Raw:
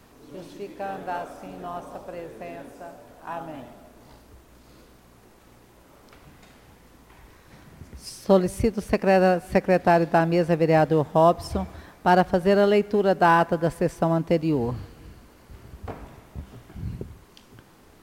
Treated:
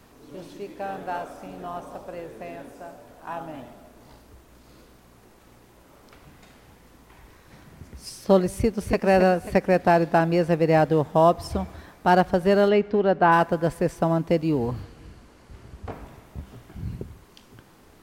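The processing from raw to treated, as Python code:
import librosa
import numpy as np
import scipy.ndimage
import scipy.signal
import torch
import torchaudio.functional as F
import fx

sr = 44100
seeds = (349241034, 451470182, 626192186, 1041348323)

y = fx.echo_throw(x, sr, start_s=8.53, length_s=0.47, ms=270, feedback_pct=40, wet_db=-7.0)
y = fx.lowpass(y, sr, hz=fx.line((12.68, 4300.0), (13.31, 2500.0)), slope=12, at=(12.68, 13.31), fade=0.02)
y = fx.lowpass(y, sr, hz=10000.0, slope=12, at=(14.83, 15.92))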